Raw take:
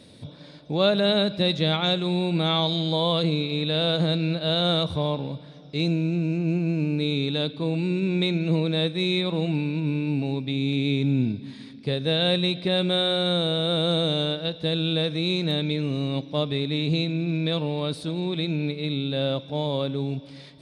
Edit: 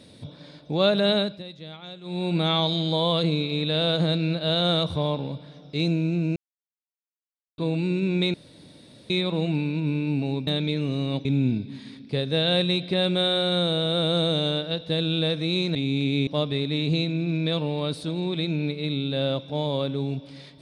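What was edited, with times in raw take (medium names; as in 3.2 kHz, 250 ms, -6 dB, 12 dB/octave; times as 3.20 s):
1.14–2.31 s: dip -17.5 dB, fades 0.29 s
6.36–7.58 s: mute
8.34–9.10 s: room tone
10.47–10.99 s: swap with 15.49–16.27 s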